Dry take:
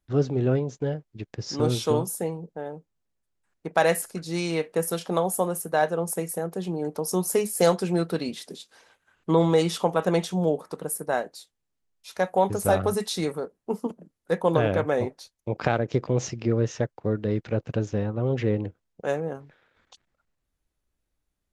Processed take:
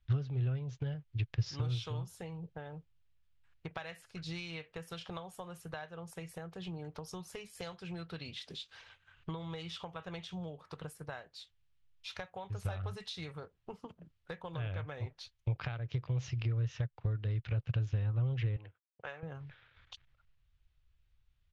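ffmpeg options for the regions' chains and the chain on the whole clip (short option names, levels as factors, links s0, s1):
-filter_complex "[0:a]asettb=1/sr,asplit=3[s0][s1][s2];[s0]atrim=end=18.564[s3];[s1]atrim=start=18.56:end=19.23,asetpts=PTS-STARTPTS,afade=t=in:d=0.004:c=qsin,afade=t=out:st=0.666:d=0.004:c=qsin,agate=range=0.0224:threshold=0.00178:ratio=3:release=100:detection=peak,bandpass=f=1400:t=q:w=0.63[s4];[s2]atrim=start=19.226[s5];[s3][s4]acrossfade=d=0.004:c1=hsin:c2=qsin[s6];[s6][s5]acrossfade=d=0.004:c1=qsin:c2=hsin,equalizer=f=2700:w=0.63:g=12,acompressor=threshold=0.0224:ratio=10,firequalizer=gain_entry='entry(120,0);entry(210,-21);entry(1200,-15);entry(2000,-18);entry(3100,-15);entry(10000,-29)':delay=0.05:min_phase=1,volume=2.99"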